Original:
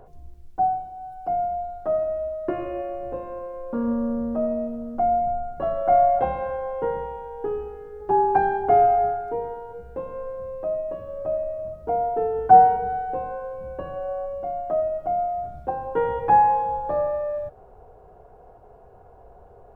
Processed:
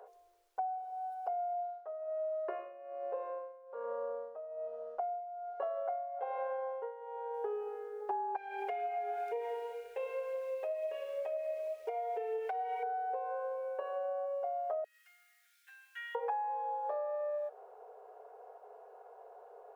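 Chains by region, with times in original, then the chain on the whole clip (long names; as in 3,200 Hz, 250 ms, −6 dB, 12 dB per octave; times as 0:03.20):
0:01.53–0:07.34: amplitude tremolo 1.2 Hz, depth 86% + high-frequency loss of the air 130 metres
0:08.36–0:12.83: high shelf with overshoot 1,700 Hz +10 dB, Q 3 + downward compressor 10 to 1, threshold −27 dBFS + phase shifter 2 Hz, delay 2.7 ms, feedback 30%
0:14.84–0:16.15: Chebyshev high-pass filter 1,700 Hz, order 5 + high-shelf EQ 2,500 Hz +10 dB
whole clip: elliptic high-pass filter 430 Hz, stop band 40 dB; downward compressor 16 to 1, threshold −31 dBFS; level −2.5 dB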